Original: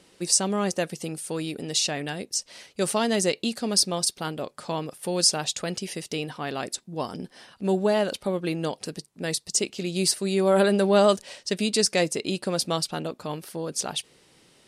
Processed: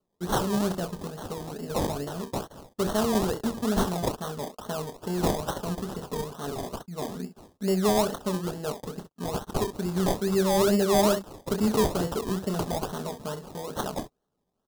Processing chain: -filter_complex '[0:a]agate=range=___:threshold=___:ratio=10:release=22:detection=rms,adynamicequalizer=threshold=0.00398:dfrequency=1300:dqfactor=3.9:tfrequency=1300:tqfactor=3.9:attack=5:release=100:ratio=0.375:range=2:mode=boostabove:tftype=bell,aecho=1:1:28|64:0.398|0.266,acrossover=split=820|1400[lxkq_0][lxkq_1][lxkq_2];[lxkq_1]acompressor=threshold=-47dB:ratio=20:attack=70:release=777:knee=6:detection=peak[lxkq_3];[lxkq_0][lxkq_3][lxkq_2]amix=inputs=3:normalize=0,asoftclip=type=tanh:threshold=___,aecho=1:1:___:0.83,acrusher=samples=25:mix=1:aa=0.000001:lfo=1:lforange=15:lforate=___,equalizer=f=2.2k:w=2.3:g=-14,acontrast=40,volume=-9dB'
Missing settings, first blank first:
-21dB, -50dB, -12.5dB, 4.7, 2.3